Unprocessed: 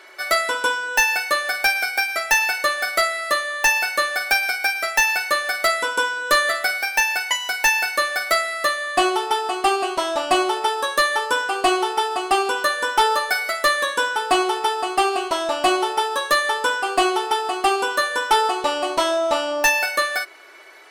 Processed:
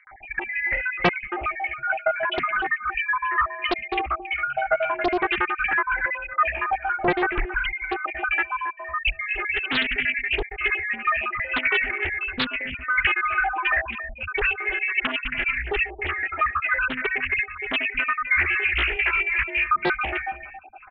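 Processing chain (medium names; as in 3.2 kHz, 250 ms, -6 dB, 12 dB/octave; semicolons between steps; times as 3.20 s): random holes in the spectrogram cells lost 67%; in parallel at -2.5 dB: peak limiter -19 dBFS, peak gain reduction 11 dB; on the sum: dynamic bell 260 Hz, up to -3 dB, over -38 dBFS, Q 0.96; bands offset in time lows, highs 70 ms, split 910 Hz; frequency inversion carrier 3 kHz; on a send: delay 275 ms -11.5 dB; on the sum: loudspeaker Doppler distortion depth 0.94 ms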